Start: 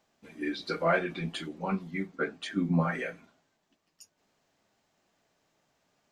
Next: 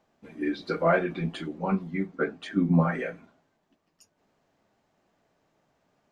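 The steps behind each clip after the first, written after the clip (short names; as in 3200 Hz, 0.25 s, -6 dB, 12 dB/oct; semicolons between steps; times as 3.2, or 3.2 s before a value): high shelf 2200 Hz -11.5 dB; gain +5 dB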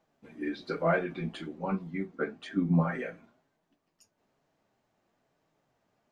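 flange 1.1 Hz, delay 6 ms, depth 3.5 ms, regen +71%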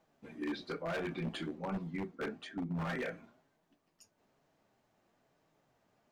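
reverse; compressor 16:1, threshold -33 dBFS, peak gain reduction 14 dB; reverse; wavefolder -32 dBFS; gain +1 dB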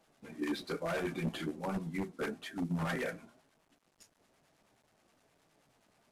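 CVSD 64 kbps; harmonic tremolo 9.5 Hz, depth 50%, crossover 820 Hz; gain +4.5 dB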